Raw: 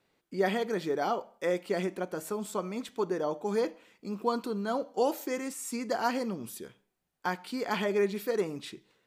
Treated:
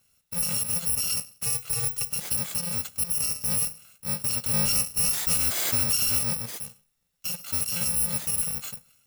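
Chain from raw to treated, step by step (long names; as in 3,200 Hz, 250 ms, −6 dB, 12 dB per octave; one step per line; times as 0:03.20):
samples in bit-reversed order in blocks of 128 samples
brickwall limiter −25.5 dBFS, peak gain reduction 10 dB
0:01.46–0:02.10: frequency shifter −49 Hz
0:04.53–0:06.19: leveller curve on the samples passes 2
level +7 dB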